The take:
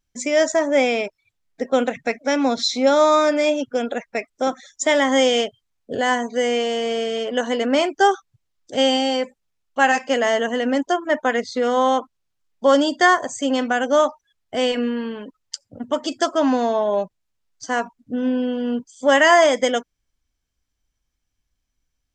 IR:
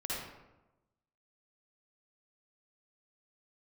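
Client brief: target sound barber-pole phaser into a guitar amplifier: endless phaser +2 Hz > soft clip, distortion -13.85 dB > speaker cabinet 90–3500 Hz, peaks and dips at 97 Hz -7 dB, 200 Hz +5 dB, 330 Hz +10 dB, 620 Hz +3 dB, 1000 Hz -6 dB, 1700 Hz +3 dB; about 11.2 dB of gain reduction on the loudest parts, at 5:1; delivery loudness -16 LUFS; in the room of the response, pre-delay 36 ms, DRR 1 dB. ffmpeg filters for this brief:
-filter_complex "[0:a]acompressor=threshold=-23dB:ratio=5,asplit=2[a][b];[1:a]atrim=start_sample=2205,adelay=36[c];[b][c]afir=irnorm=-1:irlink=0,volume=-4.5dB[d];[a][d]amix=inputs=2:normalize=0,asplit=2[e][f];[f]afreqshift=2[g];[e][g]amix=inputs=2:normalize=1,asoftclip=threshold=-23dB,highpass=90,equalizer=f=97:t=q:w=4:g=-7,equalizer=f=200:t=q:w=4:g=5,equalizer=f=330:t=q:w=4:g=10,equalizer=f=620:t=q:w=4:g=3,equalizer=f=1k:t=q:w=4:g=-6,equalizer=f=1.7k:t=q:w=4:g=3,lowpass=f=3.5k:w=0.5412,lowpass=f=3.5k:w=1.3066,volume=12dB"

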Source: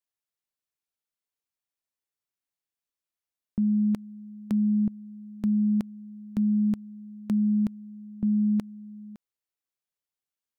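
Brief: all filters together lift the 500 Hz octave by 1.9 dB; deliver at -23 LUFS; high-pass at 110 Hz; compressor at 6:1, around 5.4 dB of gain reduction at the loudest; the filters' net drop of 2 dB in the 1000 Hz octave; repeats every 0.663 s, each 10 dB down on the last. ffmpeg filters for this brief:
-af "highpass=110,equalizer=f=500:t=o:g=3.5,equalizer=f=1k:t=o:g=-4,acompressor=threshold=-27dB:ratio=6,aecho=1:1:663|1326|1989|2652:0.316|0.101|0.0324|0.0104,volume=9.5dB"

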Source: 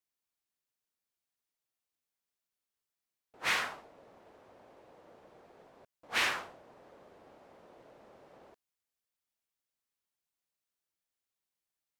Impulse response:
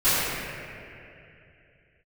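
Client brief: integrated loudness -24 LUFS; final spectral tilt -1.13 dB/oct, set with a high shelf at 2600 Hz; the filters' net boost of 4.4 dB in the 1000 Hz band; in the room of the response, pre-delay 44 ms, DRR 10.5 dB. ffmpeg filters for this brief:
-filter_complex "[0:a]equalizer=f=1k:t=o:g=4,highshelf=f=2.6k:g=8,asplit=2[a][b];[1:a]atrim=start_sample=2205,adelay=44[c];[b][c]afir=irnorm=-1:irlink=0,volume=-30dB[d];[a][d]amix=inputs=2:normalize=0,volume=5dB"

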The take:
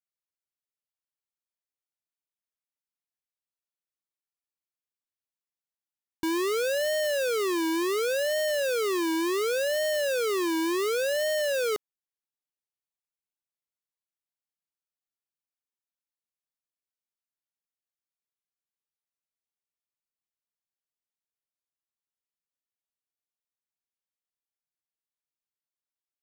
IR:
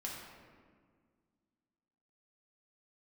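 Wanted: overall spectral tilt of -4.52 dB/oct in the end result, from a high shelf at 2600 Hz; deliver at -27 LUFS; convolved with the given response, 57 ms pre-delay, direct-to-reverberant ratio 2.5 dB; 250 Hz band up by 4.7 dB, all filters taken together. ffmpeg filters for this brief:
-filter_complex "[0:a]equalizer=f=250:t=o:g=8,highshelf=f=2.6k:g=7.5,asplit=2[a][b];[1:a]atrim=start_sample=2205,adelay=57[c];[b][c]afir=irnorm=-1:irlink=0,volume=-2.5dB[d];[a][d]amix=inputs=2:normalize=0,volume=-5.5dB"

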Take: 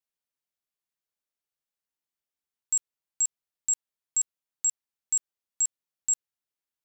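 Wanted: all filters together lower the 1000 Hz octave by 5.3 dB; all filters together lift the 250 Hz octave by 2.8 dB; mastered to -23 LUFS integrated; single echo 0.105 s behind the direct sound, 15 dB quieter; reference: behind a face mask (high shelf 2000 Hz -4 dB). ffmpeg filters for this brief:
-af "equalizer=f=250:t=o:g=4,equalizer=f=1k:t=o:g=-6,highshelf=f=2k:g=-4,aecho=1:1:105:0.178,volume=9dB"

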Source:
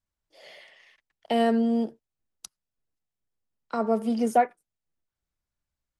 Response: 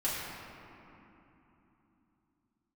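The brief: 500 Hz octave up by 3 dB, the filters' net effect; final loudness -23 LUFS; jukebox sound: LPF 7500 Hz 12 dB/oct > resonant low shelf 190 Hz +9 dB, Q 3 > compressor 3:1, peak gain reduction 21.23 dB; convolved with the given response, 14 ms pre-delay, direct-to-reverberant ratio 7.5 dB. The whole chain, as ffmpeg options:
-filter_complex "[0:a]equalizer=f=500:t=o:g=5.5,asplit=2[a][b];[1:a]atrim=start_sample=2205,adelay=14[c];[b][c]afir=irnorm=-1:irlink=0,volume=-15dB[d];[a][d]amix=inputs=2:normalize=0,lowpass=7.5k,lowshelf=f=190:t=q:w=3:g=9,acompressor=threshold=-42dB:ratio=3,volume=20.5dB"

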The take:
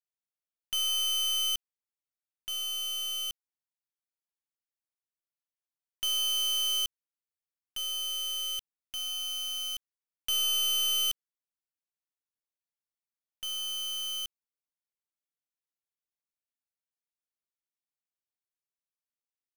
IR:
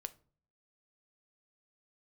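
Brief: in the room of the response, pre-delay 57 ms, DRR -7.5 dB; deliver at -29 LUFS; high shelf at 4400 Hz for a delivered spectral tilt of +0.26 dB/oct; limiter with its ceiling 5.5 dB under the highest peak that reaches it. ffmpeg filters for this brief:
-filter_complex "[0:a]highshelf=f=4.4k:g=-9,alimiter=level_in=9.5dB:limit=-24dB:level=0:latency=1,volume=-9.5dB,asplit=2[a][b];[1:a]atrim=start_sample=2205,adelay=57[c];[b][c]afir=irnorm=-1:irlink=0,volume=11dB[d];[a][d]amix=inputs=2:normalize=0,volume=5.5dB"

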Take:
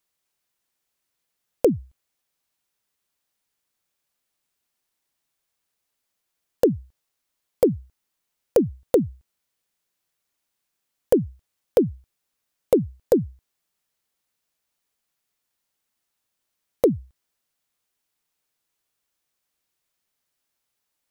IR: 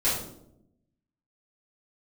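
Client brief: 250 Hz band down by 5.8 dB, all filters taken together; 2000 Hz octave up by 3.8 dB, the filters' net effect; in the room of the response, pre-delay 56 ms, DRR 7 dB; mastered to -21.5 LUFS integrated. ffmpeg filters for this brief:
-filter_complex "[0:a]equalizer=f=250:t=o:g=-8.5,equalizer=f=2k:t=o:g=5,asplit=2[a][b];[1:a]atrim=start_sample=2205,adelay=56[c];[b][c]afir=irnorm=-1:irlink=0,volume=-18.5dB[d];[a][d]amix=inputs=2:normalize=0,volume=4.5dB"

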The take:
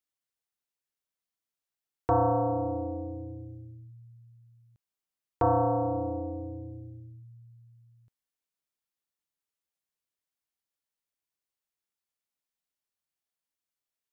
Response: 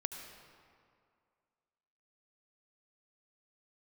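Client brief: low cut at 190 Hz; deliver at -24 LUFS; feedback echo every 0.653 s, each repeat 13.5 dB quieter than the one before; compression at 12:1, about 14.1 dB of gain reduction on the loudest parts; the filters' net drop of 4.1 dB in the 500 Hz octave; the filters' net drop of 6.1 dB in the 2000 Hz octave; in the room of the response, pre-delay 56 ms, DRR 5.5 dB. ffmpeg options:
-filter_complex "[0:a]highpass=190,equalizer=f=500:t=o:g=-4,equalizer=f=2k:t=o:g=-9,acompressor=threshold=-38dB:ratio=12,aecho=1:1:653|1306:0.211|0.0444,asplit=2[a][b];[1:a]atrim=start_sample=2205,adelay=56[c];[b][c]afir=irnorm=-1:irlink=0,volume=-5.5dB[d];[a][d]amix=inputs=2:normalize=0,volume=19dB"

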